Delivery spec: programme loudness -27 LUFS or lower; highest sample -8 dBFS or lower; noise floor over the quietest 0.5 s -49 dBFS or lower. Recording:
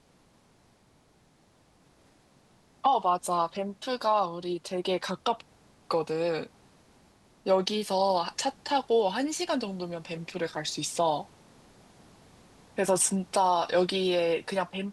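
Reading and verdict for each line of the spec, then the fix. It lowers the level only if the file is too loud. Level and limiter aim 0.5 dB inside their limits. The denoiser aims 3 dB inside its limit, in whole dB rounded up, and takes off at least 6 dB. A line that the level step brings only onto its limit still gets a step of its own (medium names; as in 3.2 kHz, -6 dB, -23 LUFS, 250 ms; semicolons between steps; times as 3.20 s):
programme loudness -28.5 LUFS: pass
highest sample -11.0 dBFS: pass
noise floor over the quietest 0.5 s -63 dBFS: pass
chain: none needed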